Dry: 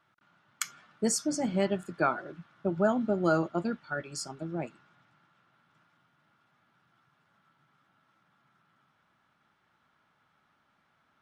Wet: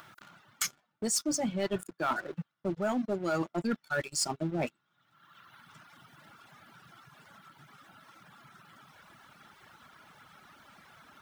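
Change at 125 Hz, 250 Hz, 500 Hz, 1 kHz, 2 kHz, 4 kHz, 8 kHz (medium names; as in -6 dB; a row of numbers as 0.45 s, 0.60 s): -2.5 dB, -2.5 dB, -3.5 dB, -2.0 dB, -0.5 dB, +4.0 dB, +2.5 dB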